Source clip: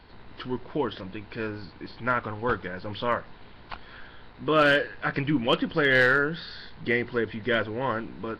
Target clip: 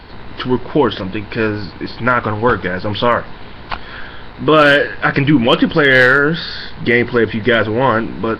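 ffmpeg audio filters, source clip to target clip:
-af "alimiter=level_in=16.5dB:limit=-1dB:release=50:level=0:latency=1,volume=-1dB"

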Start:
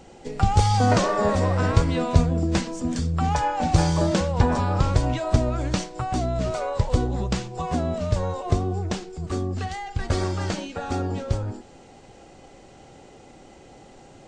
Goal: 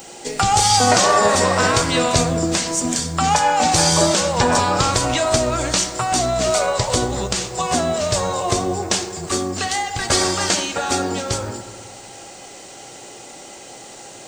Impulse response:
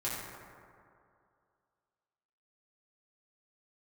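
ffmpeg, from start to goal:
-filter_complex "[0:a]aemphasis=mode=production:type=riaa,alimiter=limit=-13.5dB:level=0:latency=1:release=162,asplit=2[a][b];[1:a]atrim=start_sample=2205[c];[b][c]afir=irnorm=-1:irlink=0,volume=-11dB[d];[a][d]amix=inputs=2:normalize=0,volume=8dB"

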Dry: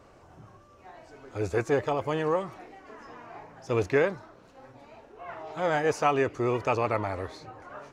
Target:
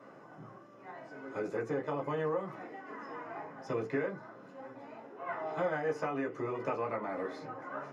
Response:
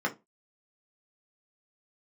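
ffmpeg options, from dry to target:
-filter_complex "[0:a]acompressor=threshold=-32dB:ratio=16[a];[1:a]atrim=start_sample=2205,asetrate=43218,aresample=44100[b];[a][b]afir=irnorm=-1:irlink=0,volume=-7.5dB"

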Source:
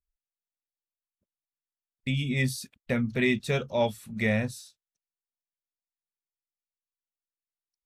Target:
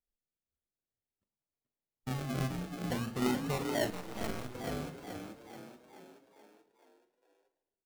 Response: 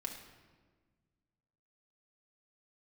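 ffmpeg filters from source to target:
-filter_complex "[0:a]acrusher=samples=37:mix=1:aa=0.000001:lfo=1:lforange=22.2:lforate=0.52,asplit=8[a][b][c][d][e][f][g][h];[b]adelay=430,afreqshift=40,volume=-5.5dB[i];[c]adelay=860,afreqshift=80,volume=-11.2dB[j];[d]adelay=1290,afreqshift=120,volume=-16.9dB[k];[e]adelay=1720,afreqshift=160,volume=-22.5dB[l];[f]adelay=2150,afreqshift=200,volume=-28.2dB[m];[g]adelay=2580,afreqshift=240,volume=-33.9dB[n];[h]adelay=3010,afreqshift=280,volume=-39.6dB[o];[a][i][j][k][l][m][n][o]amix=inputs=8:normalize=0,asplit=2[p][q];[1:a]atrim=start_sample=2205,adelay=40[r];[q][r]afir=irnorm=-1:irlink=0,volume=-10dB[s];[p][s]amix=inputs=2:normalize=0,asettb=1/sr,asplit=3[t][u][v];[t]atrim=end=3.904[w];[u]atrim=start=3.9:end=4.55,asetpts=PTS-STARTPTS,afade=t=in:d=0.004:c=qsin,afade=t=out:st=0.646:d=0.004:c=qsin,aeval=exprs='max(val(0),0)':c=same[x];[v]atrim=start=4.546[y];[w][x]acrossfade=d=0.004:c1=hsin:c2=qsin[z];[z][y]acrossfade=d=0.004:c1=qsin:c2=hsin,volume=-8dB"

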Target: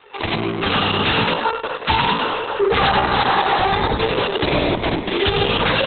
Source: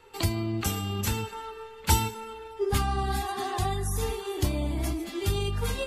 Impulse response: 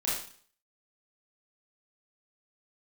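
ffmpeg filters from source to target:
-filter_complex "[0:a]aresample=16000,aresample=44100,asettb=1/sr,asplit=3[a][b][c];[a]atrim=end=3.114[d];[b]atrim=start=3.11:end=3.63,asetpts=PTS-STARTPTS,afade=t=in:d=0.004:c=qsin,afade=t=out:st=0.516:d=0.004:c=qsin,acrossover=split=180[e][f];[f]acompressor=threshold=-31dB:ratio=5[g];[e][g]amix=inputs=2:normalize=0[h];[c]atrim=start=3.626[i];[d][h]acrossfade=d=0.004:c1=hsin:c2=qsin[j];[j][i]acrossfade=d=0.004:c1=qsin:c2=hsin,asplit=6[k][l][m][n][o][p];[l]adelay=97,afreqshift=60,volume=-4dB[q];[m]adelay=194,afreqshift=120,volume=-11.5dB[r];[n]adelay=291,afreqshift=180,volume=-19.1dB[s];[o]adelay=388,afreqshift=240,volume=-26.6dB[t];[p]adelay=485,afreqshift=300,volume=-34.1dB[u];[k][q][r][s][t][u]amix=inputs=6:normalize=0,asplit=2[v][w];[1:a]atrim=start_sample=2205,asetrate=88200,aresample=44100,lowshelf=f=85:g=-8.5[x];[w][x]afir=irnorm=-1:irlink=0,volume=-24dB[y];[v][y]amix=inputs=2:normalize=0,dynaudnorm=f=110:g=7:m=10dB,asplit=2[z][aa];[aa]highpass=f=720:p=1,volume=25dB,asoftclip=type=tanh:threshold=-2dB[ab];[z][ab]amix=inputs=2:normalize=0,lowpass=f=4.2k:p=1,volume=-6dB,volume=-6.5dB" -ar 48000 -c:a libopus -b:a 6k

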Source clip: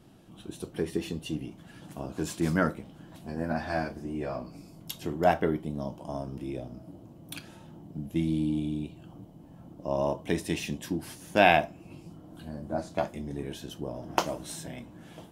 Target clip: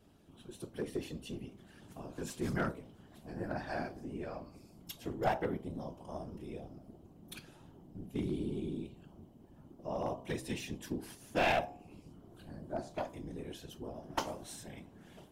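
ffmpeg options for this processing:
-af "afftfilt=real='hypot(re,im)*cos(2*PI*random(0))':imag='hypot(re,im)*sin(2*PI*random(1))':win_size=512:overlap=0.75,bandreject=f=64.99:t=h:w=4,bandreject=f=129.98:t=h:w=4,bandreject=f=194.97:t=h:w=4,bandreject=f=259.96:t=h:w=4,bandreject=f=324.95:t=h:w=4,bandreject=f=389.94:t=h:w=4,bandreject=f=454.93:t=h:w=4,bandreject=f=519.92:t=h:w=4,bandreject=f=584.91:t=h:w=4,bandreject=f=649.9:t=h:w=4,bandreject=f=714.89:t=h:w=4,bandreject=f=779.88:t=h:w=4,bandreject=f=844.87:t=h:w=4,bandreject=f=909.86:t=h:w=4,bandreject=f=974.85:t=h:w=4,bandreject=f=1.03984k:t=h:w=4,bandreject=f=1.10483k:t=h:w=4,bandreject=f=1.16982k:t=h:w=4,aeval=exprs='clip(val(0),-1,0.0473)':c=same,volume=-1.5dB"

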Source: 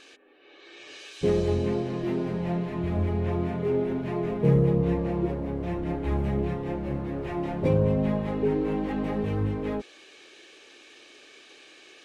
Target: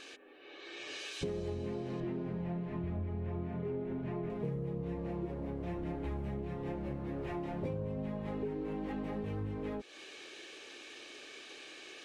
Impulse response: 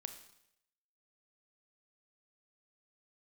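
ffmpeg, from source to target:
-filter_complex "[0:a]asettb=1/sr,asplit=3[a][b][c];[a]atrim=end=2.004[d];[b]atrim=start=2:end=4.3,asetpts=PTS-STARTPTS,afade=t=in:d=0.004:c=qsin,afade=t=out:st=2.296:d=0.004:c=qsin,bass=f=250:g=4,treble=f=4k:g=-12[e];[c]atrim=start=4.296[f];[d][e]acrossfade=d=0.004:c1=hsin:c2=qsin[g];[g][f]acrossfade=d=0.004:c1=qsin:c2=hsin,acompressor=threshold=-37dB:ratio=6,volume=1dB"

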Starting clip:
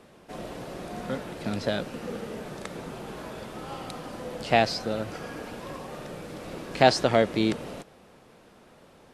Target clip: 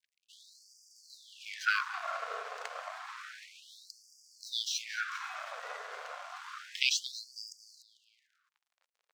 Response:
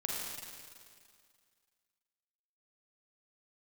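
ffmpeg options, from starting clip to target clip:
-filter_complex "[0:a]aresample=16000,aresample=44100,aeval=exprs='sgn(val(0))*max(abs(val(0))-0.00447,0)':c=same,aeval=exprs='val(0)*sin(2*PI*890*n/s)':c=same,adynamicequalizer=threshold=0.00891:dfrequency=1600:dqfactor=1.3:tfrequency=1600:tqfactor=1.3:attack=5:release=100:ratio=0.375:range=2.5:mode=boostabove:tftype=bell,asplit=2[a][b];[b]aecho=0:1:223|446|669:0.141|0.0551|0.0215[c];[a][c]amix=inputs=2:normalize=0,afftfilt=real='re*gte(b*sr/1024,400*pow(4700/400,0.5+0.5*sin(2*PI*0.3*pts/sr)))':imag='im*gte(b*sr/1024,400*pow(4700/400,0.5+0.5*sin(2*PI*0.3*pts/sr)))':win_size=1024:overlap=0.75,volume=1.5dB"

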